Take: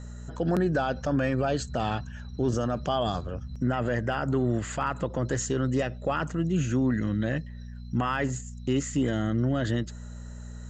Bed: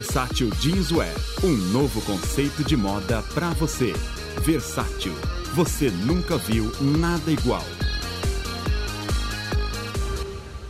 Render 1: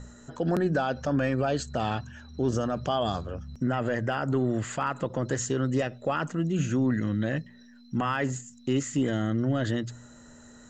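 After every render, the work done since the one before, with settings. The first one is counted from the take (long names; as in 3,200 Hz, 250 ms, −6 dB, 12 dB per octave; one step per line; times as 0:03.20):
hum removal 60 Hz, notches 3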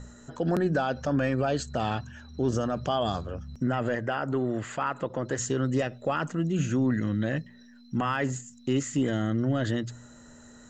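0:03.95–0:05.38: bass and treble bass −5 dB, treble −6 dB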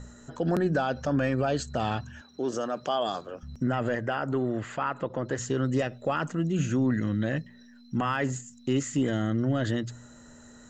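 0:02.21–0:03.43: high-pass filter 310 Hz
0:04.49–0:05.54: high-frequency loss of the air 61 metres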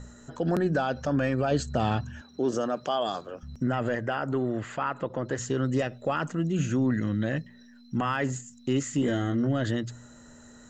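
0:01.51–0:02.76: low-shelf EQ 490 Hz +5 dB
0:09.00–0:09.47: double-tracking delay 21 ms −5 dB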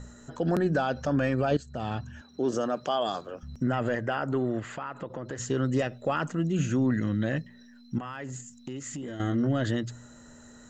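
0:01.57–0:02.83: fade in equal-power, from −15.5 dB
0:04.59–0:05.40: downward compressor 3 to 1, threshold −33 dBFS
0:07.98–0:09.20: downward compressor, threshold −34 dBFS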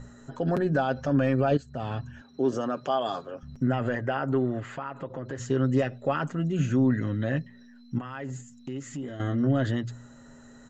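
high-shelf EQ 4,900 Hz −9.5 dB
comb filter 7.4 ms, depth 43%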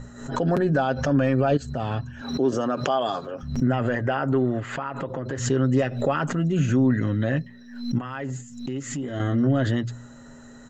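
in parallel at −3 dB: brickwall limiter −21 dBFS, peak gain reduction 8 dB
on the sum: background raised ahead of every attack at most 83 dB per second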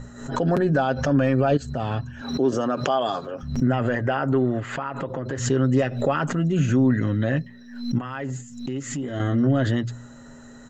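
level +1 dB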